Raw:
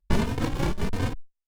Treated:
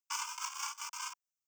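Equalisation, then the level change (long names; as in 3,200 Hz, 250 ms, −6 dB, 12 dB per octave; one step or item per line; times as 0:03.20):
Butterworth high-pass 930 Hz 72 dB per octave
high shelf with overshoot 4,400 Hz +7.5 dB, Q 1.5
phaser with its sweep stopped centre 2,700 Hz, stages 8
−2.0 dB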